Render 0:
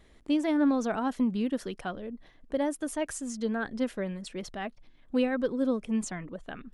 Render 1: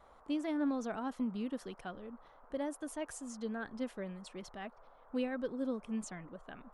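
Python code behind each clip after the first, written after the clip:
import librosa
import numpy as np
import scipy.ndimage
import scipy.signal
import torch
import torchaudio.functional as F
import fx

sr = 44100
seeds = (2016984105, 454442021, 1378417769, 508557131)

y = fx.dmg_noise_band(x, sr, seeds[0], low_hz=460.0, high_hz=1300.0, level_db=-53.0)
y = F.gain(torch.from_numpy(y), -9.0).numpy()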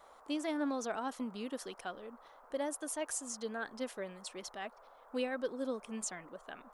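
y = fx.bass_treble(x, sr, bass_db=-14, treble_db=7)
y = F.gain(torch.from_numpy(y), 3.0).numpy()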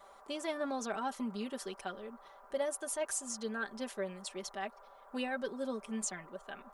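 y = x + 0.69 * np.pad(x, (int(5.1 * sr / 1000.0), 0))[:len(x)]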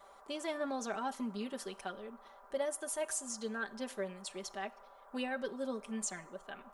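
y = fx.rev_plate(x, sr, seeds[1], rt60_s=0.64, hf_ratio=0.9, predelay_ms=0, drr_db=17.0)
y = F.gain(torch.from_numpy(y), -1.0).numpy()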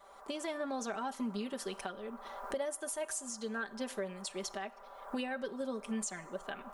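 y = fx.recorder_agc(x, sr, target_db=-28.0, rise_db_per_s=28.0, max_gain_db=30)
y = F.gain(torch.from_numpy(y), -1.5).numpy()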